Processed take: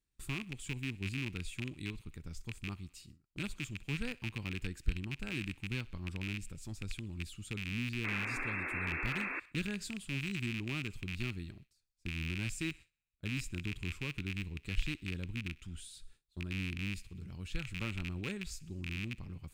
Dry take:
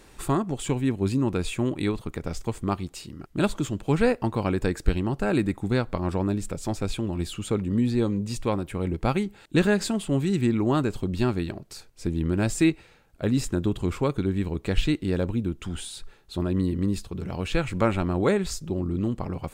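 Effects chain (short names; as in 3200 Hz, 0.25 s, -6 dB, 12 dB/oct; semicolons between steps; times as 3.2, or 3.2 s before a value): rattling part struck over -28 dBFS, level -12 dBFS; painted sound noise, 8.04–9.4, 240–2700 Hz -20 dBFS; passive tone stack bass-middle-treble 6-0-2; thinning echo 63 ms, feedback 71%, high-pass 630 Hz, level -22.5 dB; gate with hold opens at -44 dBFS; gain +2 dB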